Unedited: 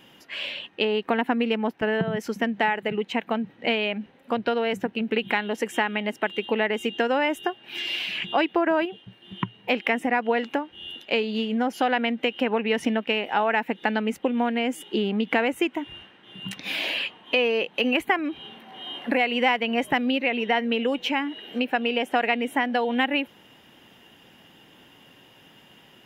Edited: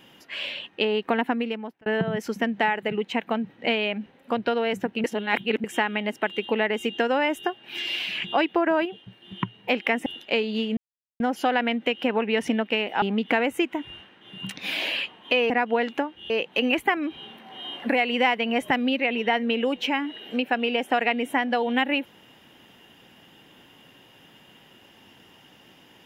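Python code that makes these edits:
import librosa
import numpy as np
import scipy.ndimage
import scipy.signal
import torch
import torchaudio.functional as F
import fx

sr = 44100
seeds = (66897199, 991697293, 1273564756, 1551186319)

y = fx.edit(x, sr, fx.fade_out_span(start_s=1.22, length_s=0.64),
    fx.reverse_span(start_s=5.04, length_s=0.6),
    fx.move(start_s=10.06, length_s=0.8, to_s=17.52),
    fx.insert_silence(at_s=11.57, length_s=0.43),
    fx.cut(start_s=13.39, length_s=1.65), tone=tone)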